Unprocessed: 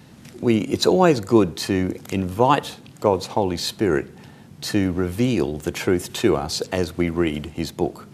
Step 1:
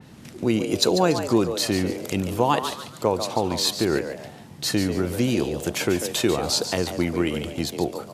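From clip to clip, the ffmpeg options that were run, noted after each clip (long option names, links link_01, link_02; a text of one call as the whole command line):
ffmpeg -i in.wav -filter_complex "[0:a]acompressor=threshold=-23dB:ratio=1.5,asplit=5[link_01][link_02][link_03][link_04][link_05];[link_02]adelay=143,afreqshift=120,volume=-9.5dB[link_06];[link_03]adelay=286,afreqshift=240,volume=-19.1dB[link_07];[link_04]adelay=429,afreqshift=360,volume=-28.8dB[link_08];[link_05]adelay=572,afreqshift=480,volume=-38.4dB[link_09];[link_01][link_06][link_07][link_08][link_09]amix=inputs=5:normalize=0,adynamicequalizer=threshold=0.00708:dfrequency=3000:dqfactor=0.7:tfrequency=3000:tqfactor=0.7:attack=5:release=100:ratio=0.375:range=2.5:mode=boostabove:tftype=highshelf" out.wav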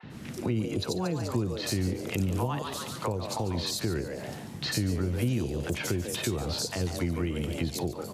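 ffmpeg -i in.wav -filter_complex "[0:a]acrossover=split=710|4000[link_01][link_02][link_03];[link_01]adelay=30[link_04];[link_03]adelay=90[link_05];[link_04][link_02][link_05]amix=inputs=3:normalize=0,acrossover=split=130[link_06][link_07];[link_07]acompressor=threshold=-33dB:ratio=10[link_08];[link_06][link_08]amix=inputs=2:normalize=0,volume=3.5dB" out.wav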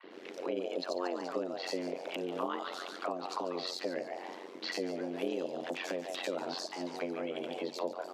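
ffmpeg -i in.wav -filter_complex "[0:a]afreqshift=170,acrossover=split=320 5200:gain=0.0891 1 0.112[link_01][link_02][link_03];[link_01][link_02][link_03]amix=inputs=3:normalize=0,tremolo=f=90:d=0.824" out.wav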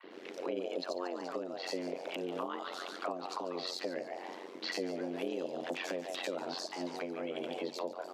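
ffmpeg -i in.wav -af "alimiter=level_in=1dB:limit=-24dB:level=0:latency=1:release=418,volume=-1dB" out.wav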